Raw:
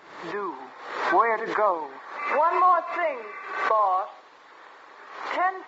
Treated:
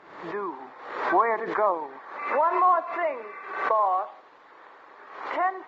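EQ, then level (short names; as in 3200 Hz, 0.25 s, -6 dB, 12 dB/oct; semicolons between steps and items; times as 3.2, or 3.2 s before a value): LPF 1800 Hz 6 dB/oct; 0.0 dB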